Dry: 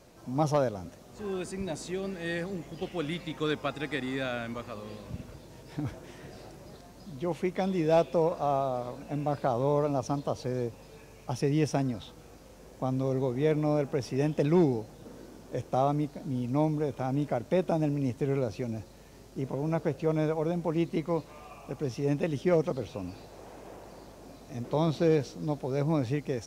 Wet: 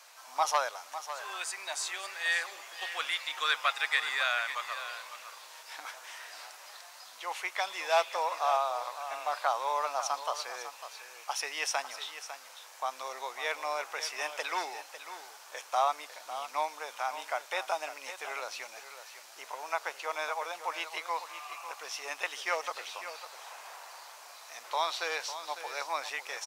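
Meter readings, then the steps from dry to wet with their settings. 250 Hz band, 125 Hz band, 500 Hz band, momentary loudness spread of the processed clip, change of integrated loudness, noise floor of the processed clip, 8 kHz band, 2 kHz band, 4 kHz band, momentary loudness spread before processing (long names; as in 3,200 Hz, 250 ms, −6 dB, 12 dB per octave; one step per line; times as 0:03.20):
−30.5 dB, below −40 dB, −9.5 dB, 17 LU, −3.5 dB, −52 dBFS, +9.0 dB, +9.0 dB, +9.0 dB, 20 LU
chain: high-pass filter 940 Hz 24 dB per octave
single-tap delay 551 ms −11.5 dB
level +8.5 dB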